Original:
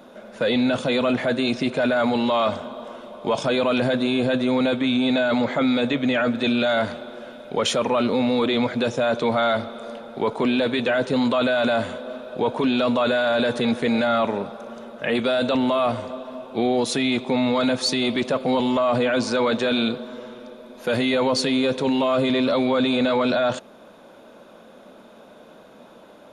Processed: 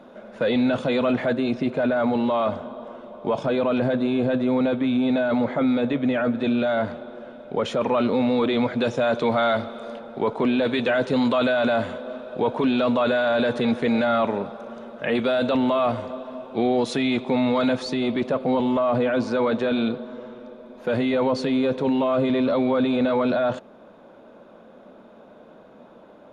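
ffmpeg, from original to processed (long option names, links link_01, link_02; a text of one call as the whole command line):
ffmpeg -i in.wav -af "asetnsamples=nb_out_samples=441:pad=0,asendcmd='1.33 lowpass f 1100;7.81 lowpass f 2300;8.81 lowpass f 4000;9.99 lowpass f 2100;10.65 lowpass f 4600;11.52 lowpass f 2700;17.83 lowpass f 1300',lowpass=frequency=2100:poles=1" out.wav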